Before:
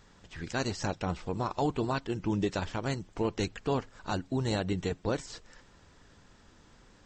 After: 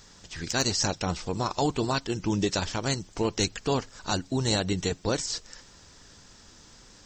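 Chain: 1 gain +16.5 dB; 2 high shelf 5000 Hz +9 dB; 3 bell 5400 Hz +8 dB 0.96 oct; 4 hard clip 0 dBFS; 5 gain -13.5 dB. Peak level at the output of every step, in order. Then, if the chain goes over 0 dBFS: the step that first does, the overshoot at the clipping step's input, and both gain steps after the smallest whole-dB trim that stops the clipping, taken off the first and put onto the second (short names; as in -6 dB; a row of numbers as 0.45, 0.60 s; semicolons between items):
-2.0, -1.0, +3.0, 0.0, -13.5 dBFS; step 3, 3.0 dB; step 1 +13.5 dB, step 5 -10.5 dB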